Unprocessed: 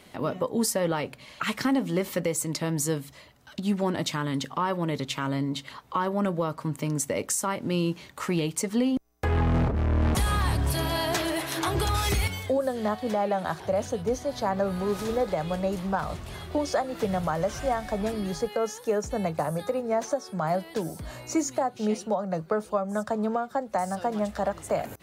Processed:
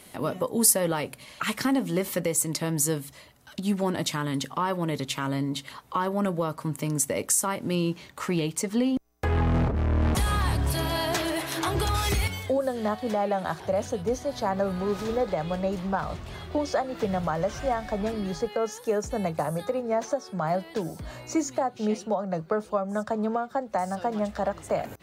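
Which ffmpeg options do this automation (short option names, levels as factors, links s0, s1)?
-af "asetnsamples=n=441:p=0,asendcmd='1.24 equalizer g 7.5;7.75 equalizer g -0.5;14.72 equalizer g -8.5;18.72 equalizer g 1;19.65 equalizer g -6.5',equalizer=f=11000:t=o:w=0.94:g=13.5"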